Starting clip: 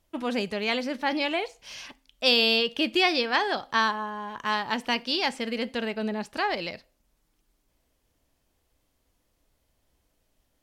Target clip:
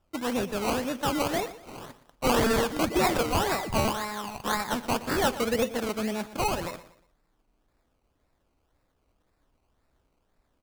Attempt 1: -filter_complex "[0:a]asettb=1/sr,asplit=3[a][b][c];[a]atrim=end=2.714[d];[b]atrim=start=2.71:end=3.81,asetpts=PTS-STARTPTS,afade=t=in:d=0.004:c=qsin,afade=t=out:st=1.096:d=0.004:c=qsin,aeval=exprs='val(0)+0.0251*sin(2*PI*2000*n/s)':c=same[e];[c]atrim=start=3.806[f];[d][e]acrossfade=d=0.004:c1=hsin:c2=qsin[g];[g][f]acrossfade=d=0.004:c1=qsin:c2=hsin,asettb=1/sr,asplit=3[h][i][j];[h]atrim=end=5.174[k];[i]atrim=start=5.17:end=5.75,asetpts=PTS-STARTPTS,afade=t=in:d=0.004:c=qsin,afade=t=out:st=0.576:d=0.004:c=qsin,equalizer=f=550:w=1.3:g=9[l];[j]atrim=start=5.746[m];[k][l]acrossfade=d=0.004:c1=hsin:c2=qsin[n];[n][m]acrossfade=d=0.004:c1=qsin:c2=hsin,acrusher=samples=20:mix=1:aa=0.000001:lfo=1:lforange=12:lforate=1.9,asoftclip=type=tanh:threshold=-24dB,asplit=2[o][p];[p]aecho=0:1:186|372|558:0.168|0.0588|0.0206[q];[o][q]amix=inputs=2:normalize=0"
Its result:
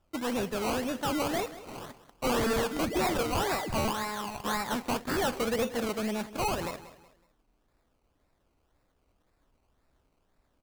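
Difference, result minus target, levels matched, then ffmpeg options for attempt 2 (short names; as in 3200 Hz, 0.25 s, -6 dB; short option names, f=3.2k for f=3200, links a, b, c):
echo 67 ms late; soft clip: distortion +9 dB
-filter_complex "[0:a]asettb=1/sr,asplit=3[a][b][c];[a]atrim=end=2.714[d];[b]atrim=start=2.71:end=3.81,asetpts=PTS-STARTPTS,afade=t=in:d=0.004:c=qsin,afade=t=out:st=1.096:d=0.004:c=qsin,aeval=exprs='val(0)+0.0251*sin(2*PI*2000*n/s)':c=same[e];[c]atrim=start=3.806[f];[d][e]acrossfade=d=0.004:c1=hsin:c2=qsin[g];[g][f]acrossfade=d=0.004:c1=qsin:c2=hsin,asettb=1/sr,asplit=3[h][i][j];[h]atrim=end=5.174[k];[i]atrim=start=5.17:end=5.75,asetpts=PTS-STARTPTS,afade=t=in:d=0.004:c=qsin,afade=t=out:st=0.576:d=0.004:c=qsin,equalizer=f=550:w=1.3:g=9[l];[j]atrim=start=5.746[m];[k][l]acrossfade=d=0.004:c1=hsin:c2=qsin[n];[n][m]acrossfade=d=0.004:c1=qsin:c2=hsin,acrusher=samples=20:mix=1:aa=0.000001:lfo=1:lforange=12:lforate=1.9,asoftclip=type=tanh:threshold=-14.5dB,asplit=2[o][p];[p]aecho=0:1:119|238|357:0.168|0.0588|0.0206[q];[o][q]amix=inputs=2:normalize=0"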